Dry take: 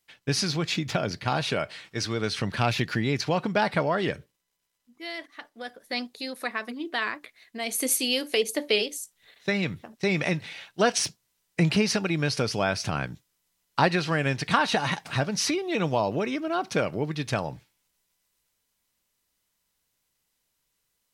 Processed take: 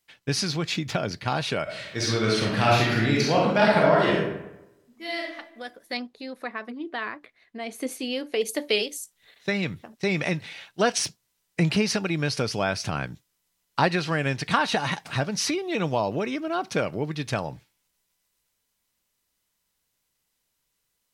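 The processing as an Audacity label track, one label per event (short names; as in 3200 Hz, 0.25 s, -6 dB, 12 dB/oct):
1.630000	5.340000	reverb throw, RT60 0.95 s, DRR -4 dB
5.970000	8.410000	LPF 1500 Hz 6 dB/oct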